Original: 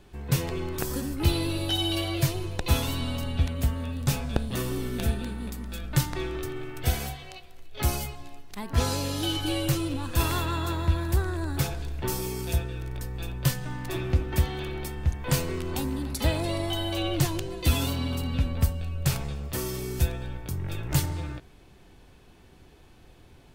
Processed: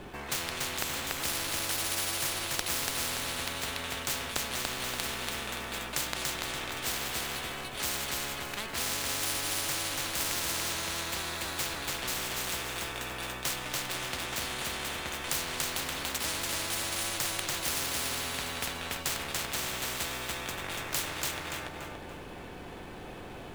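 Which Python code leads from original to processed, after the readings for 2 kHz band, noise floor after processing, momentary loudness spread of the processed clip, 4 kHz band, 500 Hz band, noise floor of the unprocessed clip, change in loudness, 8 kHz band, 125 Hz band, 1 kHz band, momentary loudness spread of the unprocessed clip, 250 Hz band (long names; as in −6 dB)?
+4.0 dB, −43 dBFS, 6 LU, +1.0 dB, −7.0 dB, −53 dBFS, −3.0 dB, +5.0 dB, −18.0 dB, −0.5 dB, 9 LU, −12.0 dB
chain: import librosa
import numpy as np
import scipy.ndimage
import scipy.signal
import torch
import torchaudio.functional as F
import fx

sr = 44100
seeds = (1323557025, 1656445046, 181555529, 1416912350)

y = scipy.ndimage.median_filter(x, 9, mode='constant')
y = fx.echo_feedback(y, sr, ms=287, feedback_pct=33, wet_db=-3.0)
y = fx.spectral_comp(y, sr, ratio=10.0)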